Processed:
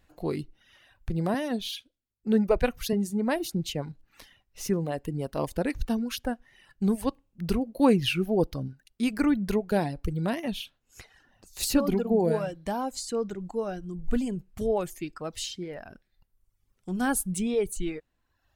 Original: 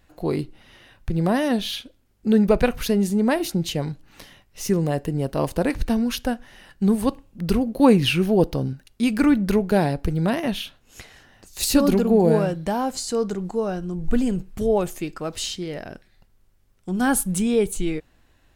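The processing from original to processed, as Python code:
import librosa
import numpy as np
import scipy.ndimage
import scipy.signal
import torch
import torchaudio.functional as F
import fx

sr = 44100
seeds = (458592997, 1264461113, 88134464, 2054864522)

y = fx.dereverb_blind(x, sr, rt60_s=1.0)
y = fx.band_widen(y, sr, depth_pct=40, at=(1.34, 2.93))
y = y * librosa.db_to_amplitude(-5.5)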